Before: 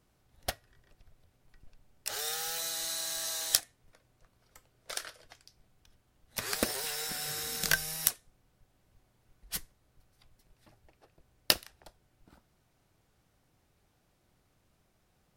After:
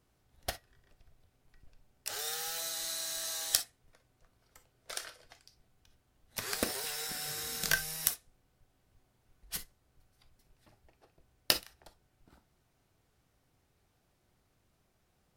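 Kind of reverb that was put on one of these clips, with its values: non-linear reverb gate 80 ms flat, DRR 10.5 dB; gain -2.5 dB

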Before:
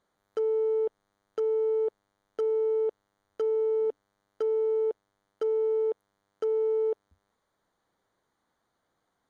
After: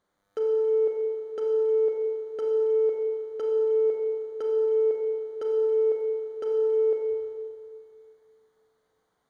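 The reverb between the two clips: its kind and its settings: Schroeder reverb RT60 2.3 s, combs from 30 ms, DRR 0 dB; gain -1 dB

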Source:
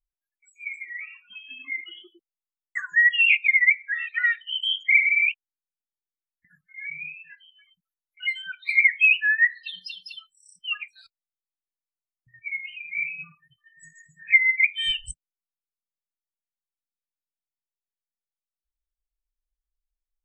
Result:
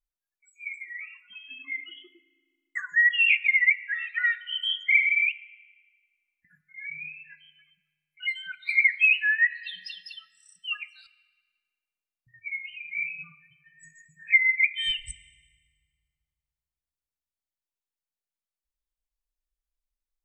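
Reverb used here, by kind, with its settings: FDN reverb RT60 1.7 s, low-frequency decay 1.6×, high-frequency decay 0.85×, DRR 15.5 dB; gain -2.5 dB

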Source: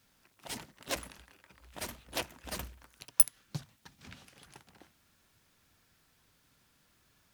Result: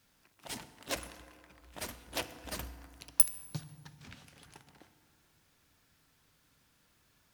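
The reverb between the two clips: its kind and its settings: FDN reverb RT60 2.5 s, low-frequency decay 1.2×, high-frequency decay 0.45×, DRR 11.5 dB; gain -1 dB

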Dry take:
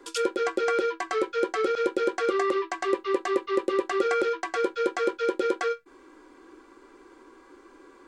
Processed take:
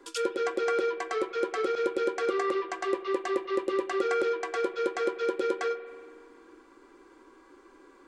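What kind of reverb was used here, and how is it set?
spring tank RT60 2 s, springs 47 ms, chirp 70 ms, DRR 12.5 dB; gain -3.5 dB

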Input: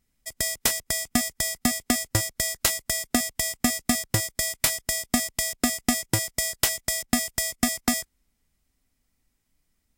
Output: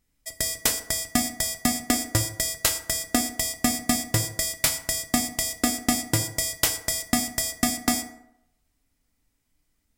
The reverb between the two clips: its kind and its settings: FDN reverb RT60 0.79 s, low-frequency decay 0.9×, high-frequency decay 0.5×, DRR 6.5 dB

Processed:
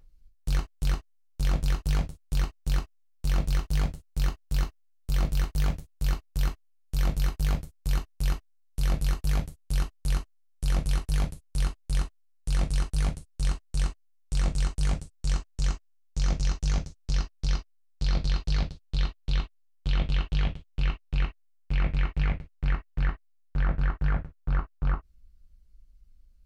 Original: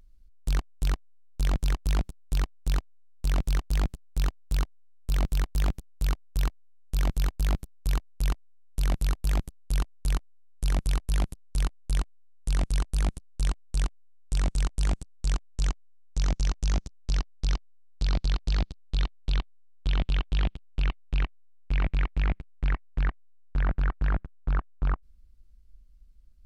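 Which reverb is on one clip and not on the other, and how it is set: non-linear reverb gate 80 ms falling, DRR 1.5 dB; gain -2.5 dB

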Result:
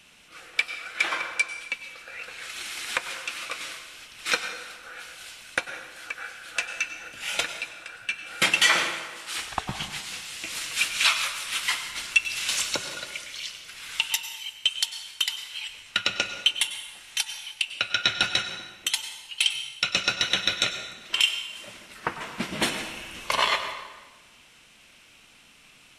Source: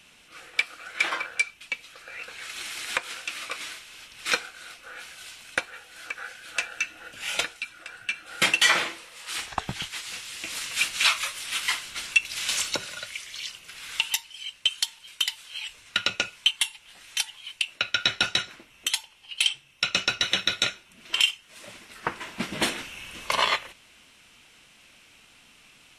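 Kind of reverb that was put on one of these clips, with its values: plate-style reverb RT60 1.3 s, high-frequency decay 0.75×, pre-delay 85 ms, DRR 8 dB

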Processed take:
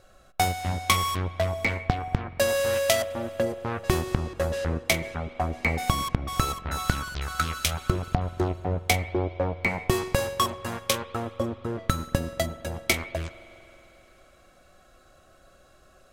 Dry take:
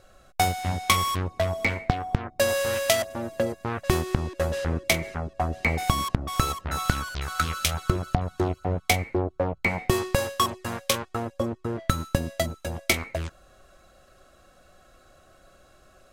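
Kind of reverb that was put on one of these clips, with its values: spring tank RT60 3.4 s, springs 45 ms, chirp 60 ms, DRR 15 dB; gain -1 dB

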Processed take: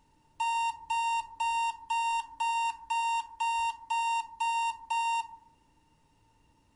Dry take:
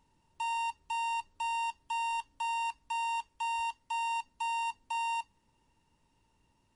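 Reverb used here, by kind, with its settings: FDN reverb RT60 0.77 s, low-frequency decay 1.25×, high-frequency decay 0.3×, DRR 6 dB; gain +3.5 dB

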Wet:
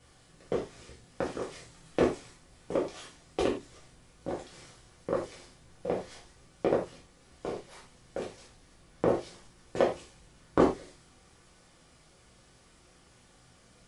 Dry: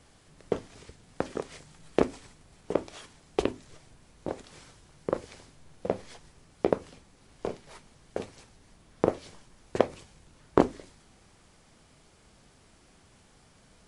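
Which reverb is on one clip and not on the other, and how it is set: non-linear reverb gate 0.13 s falling, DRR -5.5 dB; gain -6.5 dB

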